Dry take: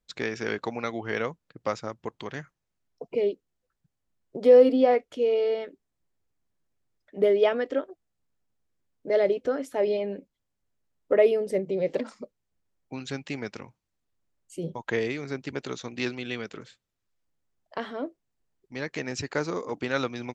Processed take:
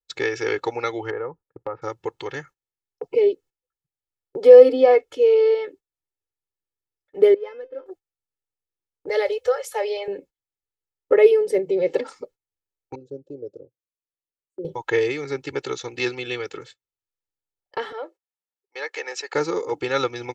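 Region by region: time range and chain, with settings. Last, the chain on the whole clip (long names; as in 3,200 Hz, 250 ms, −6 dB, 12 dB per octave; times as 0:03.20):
0:01.10–0:01.82: low-pass filter 1,400 Hz 24 dB per octave + downward compressor 2 to 1, threshold −34 dBFS
0:07.34–0:07.86: running median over 15 samples + high-frequency loss of the air 290 metres + tuned comb filter 520 Hz, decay 0.23 s, mix 90%
0:09.09–0:10.08: Chebyshev band-stop filter 120–450 Hz, order 4 + high-shelf EQ 3,800 Hz +9 dB
0:12.95–0:14.65: elliptic low-pass filter 580 Hz + spectral tilt +3 dB per octave
0:17.92–0:19.34: high-pass filter 500 Hz 24 dB per octave + high-shelf EQ 4,200 Hz −4.5 dB
whole clip: noise gate −49 dBFS, range −18 dB; low-shelf EQ 98 Hz −7.5 dB; comb filter 2.3 ms, depth 100%; level +2.5 dB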